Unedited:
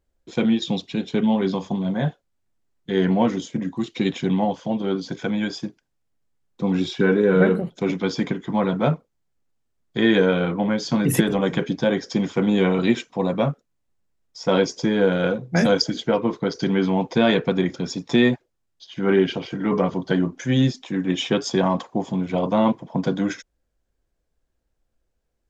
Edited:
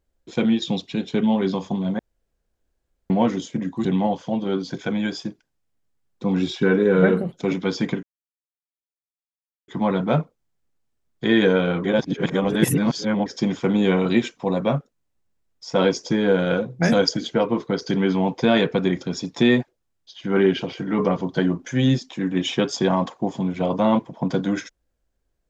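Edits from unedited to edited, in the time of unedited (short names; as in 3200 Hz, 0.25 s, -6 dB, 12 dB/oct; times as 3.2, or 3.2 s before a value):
1.99–3.1 room tone
3.85–4.23 cut
8.41 insert silence 1.65 s
10.57–11.99 reverse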